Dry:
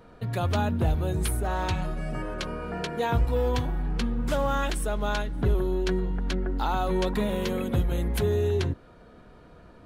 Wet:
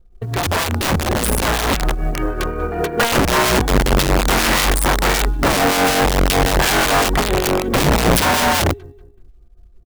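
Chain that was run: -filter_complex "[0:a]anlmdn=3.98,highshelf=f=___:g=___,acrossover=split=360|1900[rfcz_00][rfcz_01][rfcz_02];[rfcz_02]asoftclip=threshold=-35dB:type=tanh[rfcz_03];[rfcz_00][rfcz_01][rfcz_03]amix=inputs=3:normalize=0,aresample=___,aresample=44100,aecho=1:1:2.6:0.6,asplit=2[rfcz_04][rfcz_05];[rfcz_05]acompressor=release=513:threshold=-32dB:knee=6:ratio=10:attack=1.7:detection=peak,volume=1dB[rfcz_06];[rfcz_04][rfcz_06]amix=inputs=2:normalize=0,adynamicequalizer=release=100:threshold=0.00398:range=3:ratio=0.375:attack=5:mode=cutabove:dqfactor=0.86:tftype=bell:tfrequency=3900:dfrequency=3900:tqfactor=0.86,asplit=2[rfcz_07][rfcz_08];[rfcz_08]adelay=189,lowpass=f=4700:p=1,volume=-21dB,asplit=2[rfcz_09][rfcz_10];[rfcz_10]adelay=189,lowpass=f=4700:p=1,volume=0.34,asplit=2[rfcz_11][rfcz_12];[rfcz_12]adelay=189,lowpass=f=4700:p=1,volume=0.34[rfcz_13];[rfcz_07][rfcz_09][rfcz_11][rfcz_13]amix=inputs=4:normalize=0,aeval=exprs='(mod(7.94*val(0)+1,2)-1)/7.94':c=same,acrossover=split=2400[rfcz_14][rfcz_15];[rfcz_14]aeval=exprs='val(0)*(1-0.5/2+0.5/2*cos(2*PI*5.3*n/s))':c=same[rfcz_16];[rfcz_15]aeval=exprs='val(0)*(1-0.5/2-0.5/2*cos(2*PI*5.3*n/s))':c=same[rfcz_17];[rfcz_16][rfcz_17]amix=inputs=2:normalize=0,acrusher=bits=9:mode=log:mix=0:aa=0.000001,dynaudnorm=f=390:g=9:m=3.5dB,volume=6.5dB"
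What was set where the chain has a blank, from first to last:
2300, 3.5, 32000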